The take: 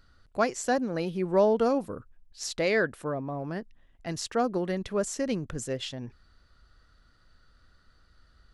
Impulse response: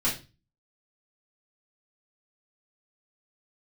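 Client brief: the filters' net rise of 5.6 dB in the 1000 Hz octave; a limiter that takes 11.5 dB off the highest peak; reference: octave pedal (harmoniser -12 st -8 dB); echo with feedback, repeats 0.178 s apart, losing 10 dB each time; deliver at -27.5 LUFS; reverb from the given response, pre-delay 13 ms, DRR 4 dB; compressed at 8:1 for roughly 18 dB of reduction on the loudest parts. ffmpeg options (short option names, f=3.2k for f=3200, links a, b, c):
-filter_complex "[0:a]equalizer=f=1k:t=o:g=8,acompressor=threshold=-34dB:ratio=8,alimiter=level_in=7.5dB:limit=-24dB:level=0:latency=1,volume=-7.5dB,aecho=1:1:178|356|534|712:0.316|0.101|0.0324|0.0104,asplit=2[a][b];[1:a]atrim=start_sample=2205,adelay=13[c];[b][c]afir=irnorm=-1:irlink=0,volume=-13.5dB[d];[a][d]amix=inputs=2:normalize=0,asplit=2[e][f];[f]asetrate=22050,aresample=44100,atempo=2,volume=-8dB[g];[e][g]amix=inputs=2:normalize=0,volume=11dB"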